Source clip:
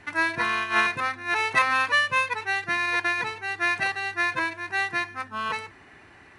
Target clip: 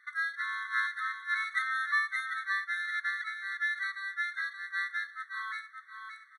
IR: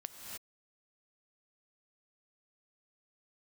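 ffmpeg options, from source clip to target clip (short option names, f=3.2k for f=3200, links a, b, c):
-af "equalizer=f=6.5k:w=1.3:g=-9.5,aecho=1:1:574|1148|1722:0.501|0.115|0.0265,afftfilt=real='re*eq(mod(floor(b*sr/1024/1100),2),1)':imag='im*eq(mod(floor(b*sr/1024/1100),2),1)':win_size=1024:overlap=0.75,volume=-6.5dB"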